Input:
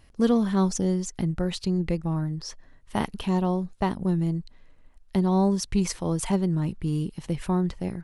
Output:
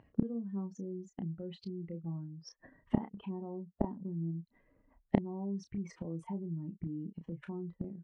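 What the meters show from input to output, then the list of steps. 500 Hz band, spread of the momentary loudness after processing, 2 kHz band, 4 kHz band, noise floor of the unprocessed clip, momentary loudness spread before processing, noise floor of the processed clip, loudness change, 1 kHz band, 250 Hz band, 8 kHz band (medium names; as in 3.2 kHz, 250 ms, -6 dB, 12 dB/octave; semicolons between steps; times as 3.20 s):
-14.0 dB, 9 LU, -16.5 dB, -20.5 dB, -54 dBFS, 8 LU, -77 dBFS, -13.0 dB, -16.5 dB, -12.0 dB, under -25 dB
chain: spectral contrast enhancement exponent 1.9; high-pass 250 Hz 12 dB/octave; peaking EQ 4.6 kHz -12 dB 1.1 oct; level rider gain up to 12 dB; peak limiter -15.5 dBFS, peak gain reduction 10 dB; inverted gate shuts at -26 dBFS, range -30 dB; distance through air 200 m; doubling 30 ms -8 dB; trim +12.5 dB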